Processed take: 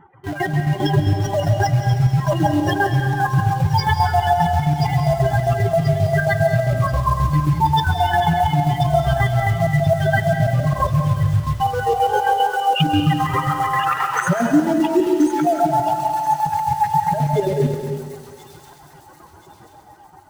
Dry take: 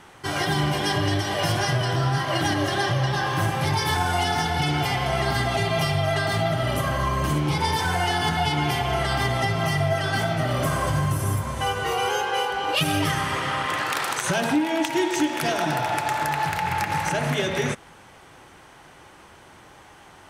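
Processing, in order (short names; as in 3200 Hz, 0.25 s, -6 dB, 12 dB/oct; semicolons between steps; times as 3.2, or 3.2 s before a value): spectral contrast raised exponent 3.2; AGC gain up to 5 dB; in parallel at -8 dB: bit-crush 5-bit; on the sum: chopper 7.5 Hz, depth 60%, duty 50%; thin delay 1.033 s, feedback 44%, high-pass 3700 Hz, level -5.5 dB; on a send at -5 dB: reverb RT60 1.6 s, pre-delay 0.111 s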